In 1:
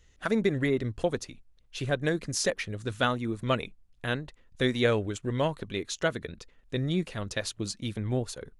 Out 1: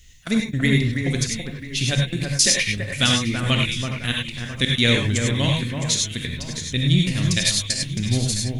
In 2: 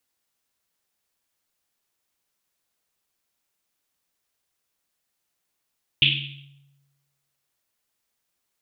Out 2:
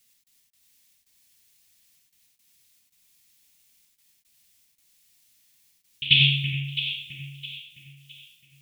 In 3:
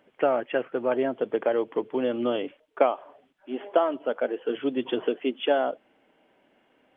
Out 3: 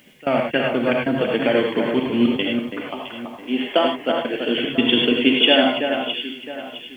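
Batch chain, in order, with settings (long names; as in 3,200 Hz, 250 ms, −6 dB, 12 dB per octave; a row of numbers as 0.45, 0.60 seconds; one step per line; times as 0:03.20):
gate pattern "x.x.xxx.xxxxxx" 113 BPM −24 dB
high-shelf EQ 2,200 Hz +6.5 dB
delay that swaps between a low-pass and a high-pass 331 ms, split 2,200 Hz, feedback 57%, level −5.5 dB
reverb whose tail is shaped and stops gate 120 ms rising, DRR 0.5 dB
bit reduction 12 bits
flat-topped bell 730 Hz −12 dB 2.5 octaves
normalise the peak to −2 dBFS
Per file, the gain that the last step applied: +8.5, +6.0, +14.0 decibels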